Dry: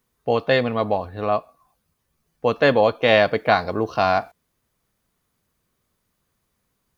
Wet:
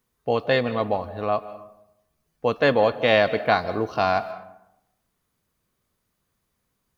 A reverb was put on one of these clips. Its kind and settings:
comb and all-pass reverb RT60 0.85 s, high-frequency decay 0.5×, pre-delay 115 ms, DRR 15 dB
level −2.5 dB

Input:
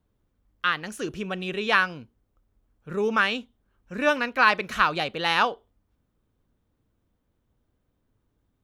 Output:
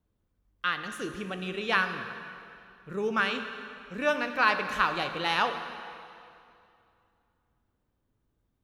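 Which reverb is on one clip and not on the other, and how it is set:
dense smooth reverb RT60 2.6 s, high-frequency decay 0.85×, DRR 7 dB
level −5 dB

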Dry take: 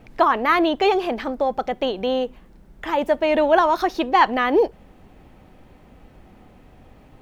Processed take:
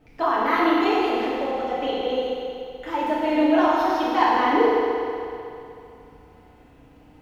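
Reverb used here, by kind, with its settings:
feedback delay network reverb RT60 2.7 s, low-frequency decay 0.8×, high-frequency decay 0.9×, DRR −9 dB
level −11.5 dB

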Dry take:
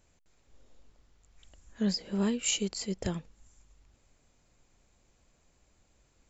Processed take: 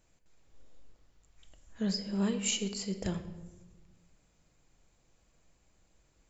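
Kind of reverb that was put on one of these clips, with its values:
rectangular room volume 730 cubic metres, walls mixed, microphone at 0.62 metres
level −2.5 dB

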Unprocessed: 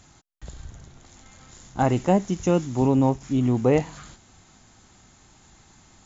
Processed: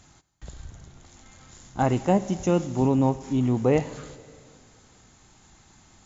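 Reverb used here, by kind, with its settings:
four-comb reverb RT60 2.2 s, combs from 31 ms, DRR 15.5 dB
level −1.5 dB

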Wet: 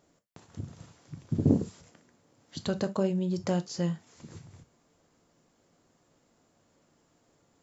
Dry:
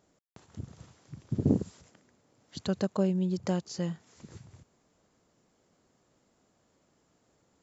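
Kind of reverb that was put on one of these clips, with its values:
reverb whose tail is shaped and stops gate 90 ms falling, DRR 8.5 dB
level +1.5 dB

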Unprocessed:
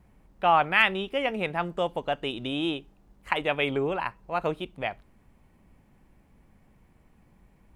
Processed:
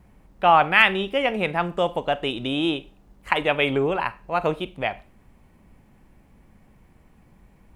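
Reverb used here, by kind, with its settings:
four-comb reverb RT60 0.34 s, combs from 30 ms, DRR 16 dB
level +5 dB

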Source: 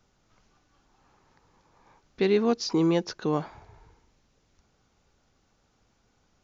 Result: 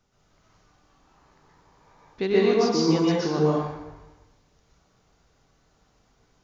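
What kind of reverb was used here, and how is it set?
dense smooth reverb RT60 0.98 s, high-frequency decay 0.8×, pre-delay 110 ms, DRR −6.5 dB
level −3 dB

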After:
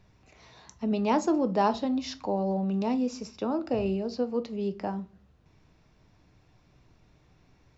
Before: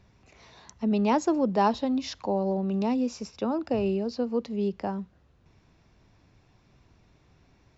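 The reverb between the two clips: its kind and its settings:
rectangular room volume 160 cubic metres, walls furnished, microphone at 0.49 metres
level −1.5 dB

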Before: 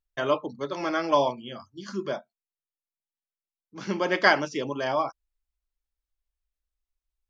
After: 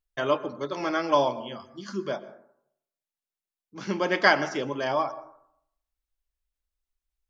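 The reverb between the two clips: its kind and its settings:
dense smooth reverb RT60 0.7 s, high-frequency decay 0.35×, pre-delay 105 ms, DRR 16 dB

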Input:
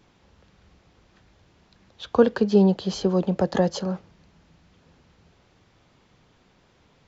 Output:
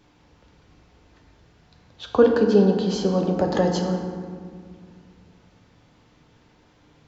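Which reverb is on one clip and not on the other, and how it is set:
feedback delay network reverb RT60 2 s, low-frequency decay 1.5×, high-frequency decay 0.5×, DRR 2 dB

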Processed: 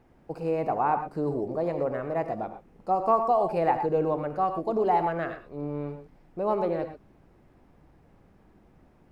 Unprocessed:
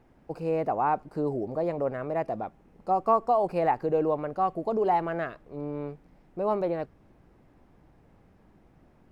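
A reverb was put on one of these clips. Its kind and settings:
reverb whose tail is shaped and stops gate 140 ms rising, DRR 7.5 dB

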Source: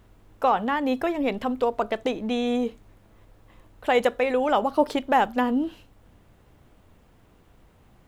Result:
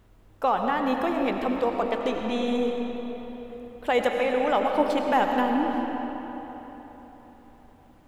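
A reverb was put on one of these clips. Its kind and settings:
comb and all-pass reverb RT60 4.1 s, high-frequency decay 0.65×, pre-delay 55 ms, DRR 2 dB
level −2.5 dB

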